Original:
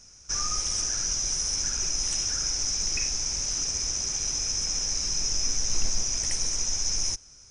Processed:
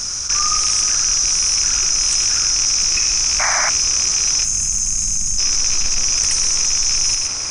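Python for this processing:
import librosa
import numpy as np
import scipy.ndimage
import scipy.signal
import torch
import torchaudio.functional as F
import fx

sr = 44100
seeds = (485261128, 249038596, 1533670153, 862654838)

p1 = fx.rattle_buzz(x, sr, strikes_db=-41.0, level_db=-26.0)
p2 = fx.peak_eq(p1, sr, hz=1200.0, db=8.0, octaves=0.68)
p3 = p2 + 10.0 ** (-9.5 / 20.0) * np.pad(p2, (int(121 * sr / 1000.0), 0))[:len(p2)]
p4 = fx.spec_box(p3, sr, start_s=4.44, length_s=0.94, low_hz=250.0, high_hz=6200.0, gain_db=-16)
p5 = fx.high_shelf(p4, sr, hz=2700.0, db=9.5)
p6 = p5 + fx.echo_tape(p5, sr, ms=182, feedback_pct=82, wet_db=-16.0, lp_hz=2600.0, drive_db=8.0, wow_cents=33, dry=0)
p7 = fx.spec_paint(p6, sr, seeds[0], shape='noise', start_s=3.39, length_s=0.31, low_hz=590.0, high_hz=2400.0, level_db=-23.0)
y = fx.env_flatten(p7, sr, amount_pct=70)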